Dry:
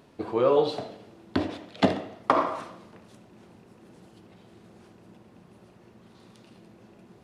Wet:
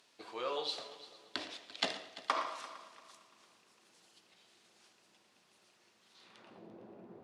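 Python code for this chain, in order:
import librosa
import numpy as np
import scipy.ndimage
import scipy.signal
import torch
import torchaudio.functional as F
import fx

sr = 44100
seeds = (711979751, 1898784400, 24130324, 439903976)

y = fx.filter_sweep_bandpass(x, sr, from_hz=5700.0, to_hz=500.0, start_s=6.12, end_s=6.66, q=0.83)
y = fx.echo_heads(y, sr, ms=114, heads='first and third', feedback_pct=49, wet_db=-17.5)
y = y * librosa.db_to_amplitude(2.0)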